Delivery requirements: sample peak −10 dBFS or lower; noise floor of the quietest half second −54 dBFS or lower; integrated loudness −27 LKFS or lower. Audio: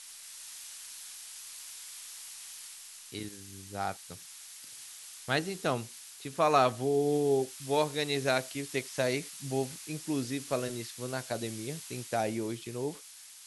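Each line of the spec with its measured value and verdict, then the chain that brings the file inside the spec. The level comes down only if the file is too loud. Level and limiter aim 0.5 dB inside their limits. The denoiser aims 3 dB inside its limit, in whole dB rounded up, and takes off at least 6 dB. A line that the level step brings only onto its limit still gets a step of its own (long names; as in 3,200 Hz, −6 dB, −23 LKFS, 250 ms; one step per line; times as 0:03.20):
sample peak −12.0 dBFS: in spec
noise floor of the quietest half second −51 dBFS: out of spec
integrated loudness −33.5 LKFS: in spec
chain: broadband denoise 6 dB, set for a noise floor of −51 dBFS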